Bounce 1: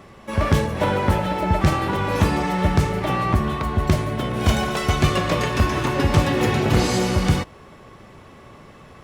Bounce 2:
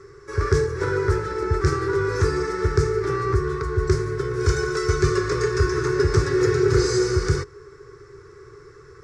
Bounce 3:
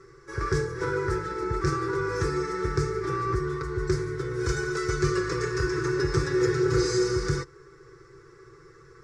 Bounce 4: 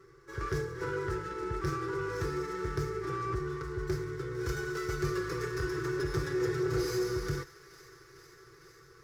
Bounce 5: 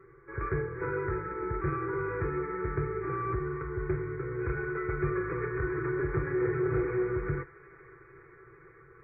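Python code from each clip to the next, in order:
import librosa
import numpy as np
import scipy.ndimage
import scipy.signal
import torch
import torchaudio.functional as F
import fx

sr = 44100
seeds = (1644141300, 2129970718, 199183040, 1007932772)

y1 = fx.curve_eq(x, sr, hz=(140.0, 220.0, 410.0, 630.0, 1400.0, 2100.0, 3000.0, 5200.0, 8400.0, 13000.0), db=(0, -29, 14, -26, 5, -5, -19, 5, -2, -21))
y1 = y1 * librosa.db_to_amplitude(-1.5)
y2 = y1 + 0.61 * np.pad(y1, (int(6.0 * sr / 1000.0), 0))[:len(y1)]
y2 = y2 * librosa.db_to_amplitude(-5.5)
y3 = fx.echo_wet_highpass(y2, sr, ms=453, feedback_pct=79, hz=1600.0, wet_db=-17.0)
y3 = fx.cheby_harmonics(y3, sr, harmonics=(5,), levels_db=(-26,), full_scale_db=-11.5)
y3 = fx.running_max(y3, sr, window=3)
y3 = y3 * librosa.db_to_amplitude(-8.0)
y4 = fx.brickwall_lowpass(y3, sr, high_hz=2500.0)
y4 = y4 * librosa.db_to_amplitude(2.0)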